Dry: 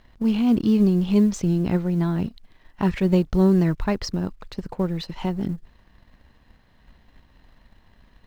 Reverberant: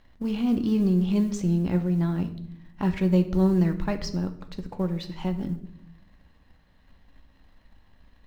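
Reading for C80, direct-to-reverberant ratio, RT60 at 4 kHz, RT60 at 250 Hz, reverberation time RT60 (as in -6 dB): 16.5 dB, 7.0 dB, 0.55 s, 1.2 s, 0.75 s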